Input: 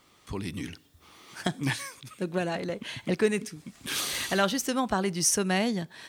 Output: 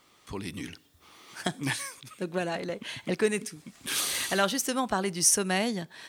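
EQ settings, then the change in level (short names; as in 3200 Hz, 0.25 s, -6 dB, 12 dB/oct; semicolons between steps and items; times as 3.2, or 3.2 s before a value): low shelf 200 Hz -6 dB; dynamic EQ 9900 Hz, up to +5 dB, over -50 dBFS, Q 1.3; 0.0 dB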